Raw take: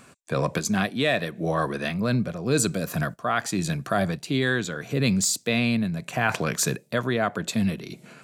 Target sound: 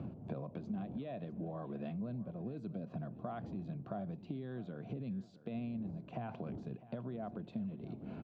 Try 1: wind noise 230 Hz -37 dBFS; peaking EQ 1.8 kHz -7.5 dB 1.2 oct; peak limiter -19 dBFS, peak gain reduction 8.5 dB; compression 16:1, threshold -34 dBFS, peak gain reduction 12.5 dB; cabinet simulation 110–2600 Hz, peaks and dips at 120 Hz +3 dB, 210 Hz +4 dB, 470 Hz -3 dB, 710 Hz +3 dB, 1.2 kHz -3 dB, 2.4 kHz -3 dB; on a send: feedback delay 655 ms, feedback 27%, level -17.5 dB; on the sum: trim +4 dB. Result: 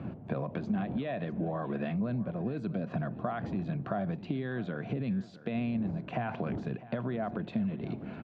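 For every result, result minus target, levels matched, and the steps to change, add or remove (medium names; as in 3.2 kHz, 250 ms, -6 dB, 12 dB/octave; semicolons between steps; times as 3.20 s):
compression: peak gain reduction -9 dB; 2 kHz band +7.0 dB
change: compression 16:1, threshold -43.5 dBFS, peak gain reduction 21.5 dB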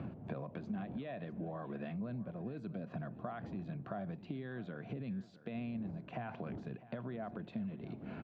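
2 kHz band +7.0 dB
change: peaking EQ 1.8 kHz -19 dB 1.2 oct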